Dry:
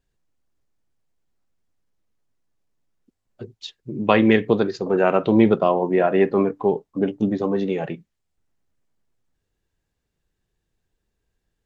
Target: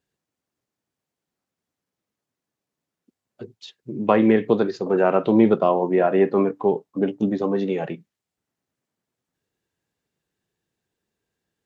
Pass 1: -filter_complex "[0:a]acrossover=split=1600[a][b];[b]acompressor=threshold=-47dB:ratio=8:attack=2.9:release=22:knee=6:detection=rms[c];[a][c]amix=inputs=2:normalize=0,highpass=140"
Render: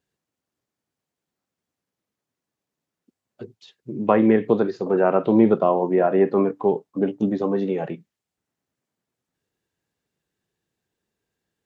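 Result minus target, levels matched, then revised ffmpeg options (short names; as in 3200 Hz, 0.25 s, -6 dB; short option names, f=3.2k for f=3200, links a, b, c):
compressor: peak gain reduction +9 dB
-filter_complex "[0:a]acrossover=split=1600[a][b];[b]acompressor=threshold=-36.5dB:ratio=8:attack=2.9:release=22:knee=6:detection=rms[c];[a][c]amix=inputs=2:normalize=0,highpass=140"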